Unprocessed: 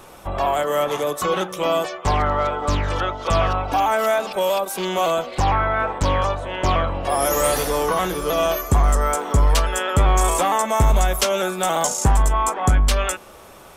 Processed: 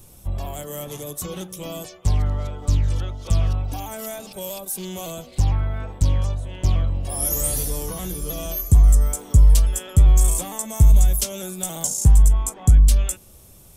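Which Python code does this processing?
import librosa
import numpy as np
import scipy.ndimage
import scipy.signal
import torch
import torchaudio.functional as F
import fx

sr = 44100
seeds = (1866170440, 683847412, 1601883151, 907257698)

y = fx.curve_eq(x, sr, hz=(110.0, 420.0, 1300.0, 10000.0), db=(0, -16, -25, -1))
y = F.gain(torch.from_numpy(y), 4.5).numpy()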